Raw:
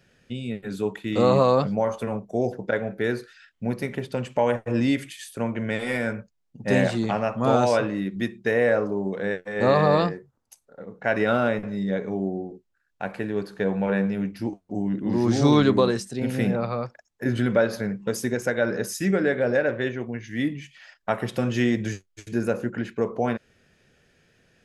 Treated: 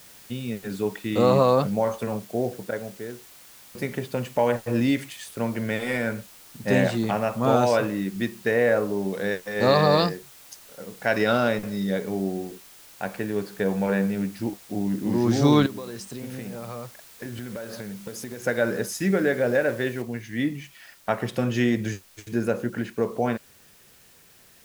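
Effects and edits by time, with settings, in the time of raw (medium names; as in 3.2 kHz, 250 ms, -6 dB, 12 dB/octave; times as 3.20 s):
1.92–3.75 s: studio fade out
8.97–12.36 s: peaking EQ 5 kHz +14 dB 0.76 oct
15.66–18.46 s: compression 12:1, threshold -31 dBFS
20.02 s: noise floor step -49 dB -55 dB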